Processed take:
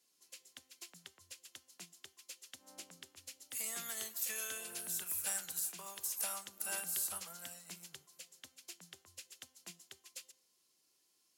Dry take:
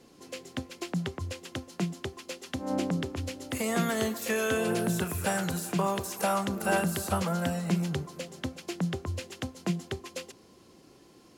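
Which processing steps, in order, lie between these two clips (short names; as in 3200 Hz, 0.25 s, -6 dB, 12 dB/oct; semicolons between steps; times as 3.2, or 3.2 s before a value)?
pre-emphasis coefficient 0.97; de-hum 259.3 Hz, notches 30; upward expander 1.5:1, over -52 dBFS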